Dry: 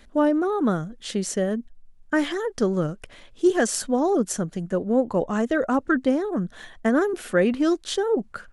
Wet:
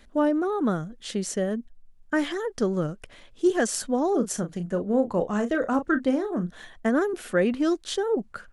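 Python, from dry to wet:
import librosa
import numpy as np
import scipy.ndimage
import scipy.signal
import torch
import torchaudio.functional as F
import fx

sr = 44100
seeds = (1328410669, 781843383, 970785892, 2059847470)

y = fx.doubler(x, sr, ms=34.0, db=-9.5, at=(4.11, 6.58))
y = F.gain(torch.from_numpy(y), -2.5).numpy()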